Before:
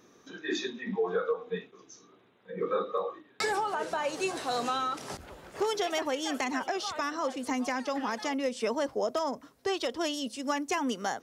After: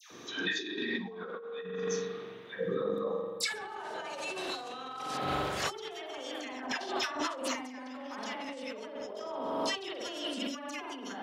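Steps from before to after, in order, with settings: 2.54–3.43 s: FFT filter 110 Hz 0 dB, 2.4 kHz -24 dB, 12 kHz -1 dB; spring tank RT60 1.5 s, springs 43 ms, chirp 45 ms, DRR 0 dB; 6.60–7.44 s: gate -29 dBFS, range -13 dB; high-pass 75 Hz; phase dispersion lows, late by 115 ms, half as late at 1.2 kHz; compressor with a negative ratio -39 dBFS, ratio -1; peaking EQ 3.5 kHz +6 dB 1.3 oct; 8.95–9.76 s: swell ahead of each attack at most 22 dB/s

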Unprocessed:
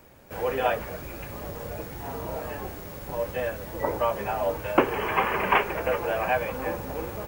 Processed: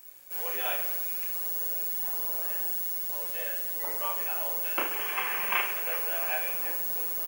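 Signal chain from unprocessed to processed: pre-emphasis filter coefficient 0.97; reverse bouncing-ball echo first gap 30 ms, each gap 1.4×, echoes 5; trim +5.5 dB

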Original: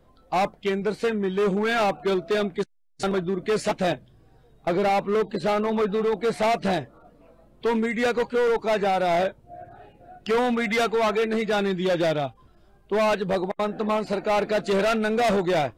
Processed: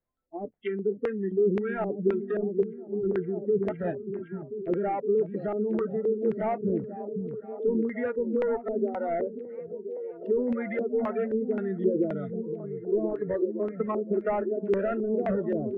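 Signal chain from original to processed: spectral noise reduction 26 dB; low-pass that closes with the level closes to 880 Hz, closed at -22 dBFS; 13.07–14.36 s: transient shaper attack +6 dB, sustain -1 dB; LFO low-pass square 1.9 Hz 370–2100 Hz; repeats whose band climbs or falls 515 ms, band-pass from 170 Hz, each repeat 0.7 oct, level -3 dB; trim -5.5 dB

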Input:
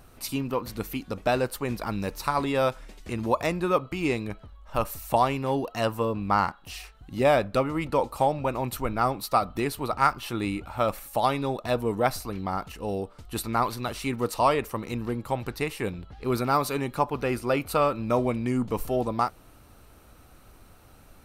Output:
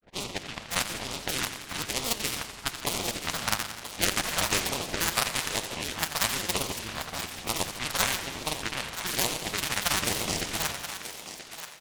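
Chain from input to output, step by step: spectral contrast reduction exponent 0.21; gate with hold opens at -40 dBFS; level-controlled noise filter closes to 1.2 kHz, open at -21.5 dBFS; granulator, pitch spread up and down by 7 st; LFO notch sine 0.61 Hz 320–1700 Hz; tempo 1.8×; on a send: thinning echo 980 ms, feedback 29%, high-pass 420 Hz, level -10.5 dB; on the sum: modulated delay 85 ms, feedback 71%, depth 194 cents, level -11 dB

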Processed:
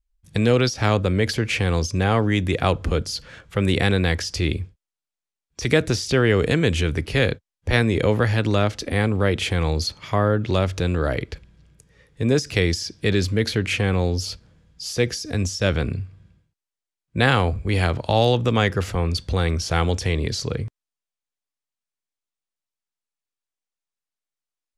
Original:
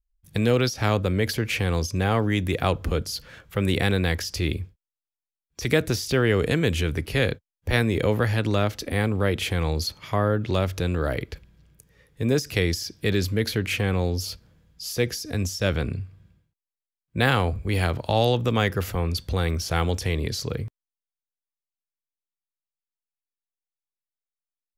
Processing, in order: low-pass 9.6 kHz 24 dB/octave; trim +3 dB

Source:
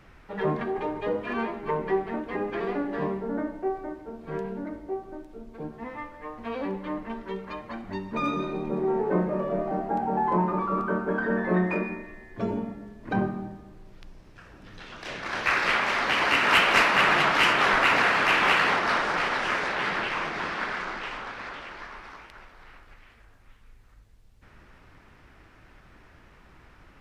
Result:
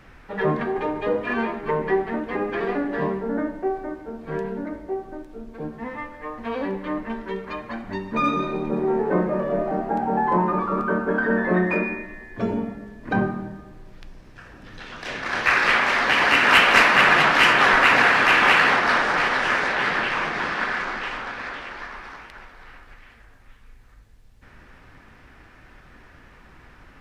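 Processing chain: peaking EQ 1.7 kHz +3.5 dB 0.27 oct; on a send: reverberation RT60 1.0 s, pre-delay 3 ms, DRR 9.5 dB; on the sum: trim +4 dB

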